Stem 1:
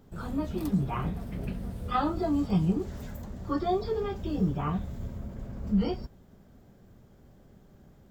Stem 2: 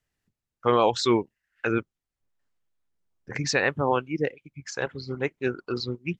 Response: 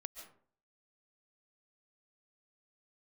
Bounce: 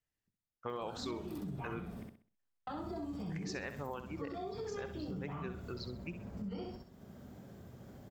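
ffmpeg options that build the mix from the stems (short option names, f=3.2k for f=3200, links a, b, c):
-filter_complex "[0:a]highpass=85,acompressor=mode=upward:threshold=-39dB:ratio=2.5,alimiter=level_in=1.5dB:limit=-24dB:level=0:latency=1:release=13,volume=-1.5dB,adelay=700,volume=-5.5dB,asplit=3[a][b][c];[a]atrim=end=2.03,asetpts=PTS-STARTPTS,afade=t=out:st=2.026:d=0.004:c=hsin[d];[b]atrim=start=2.03:end=2.67,asetpts=PTS-STARTPTS,volume=0[e];[c]atrim=start=2.67,asetpts=PTS-STARTPTS,afade=t=in:d=0.004:c=hsin[f];[d][e][f]concat=n=3:v=0:a=1,asplit=2[g][h];[h]volume=-3.5dB[i];[1:a]volume=-11dB,asplit=2[j][k];[k]volume=-11dB[l];[i][l]amix=inputs=2:normalize=0,aecho=0:1:64|128|192|256|320:1|0.32|0.102|0.0328|0.0105[m];[g][j][m]amix=inputs=3:normalize=0,acompressor=threshold=-40dB:ratio=3"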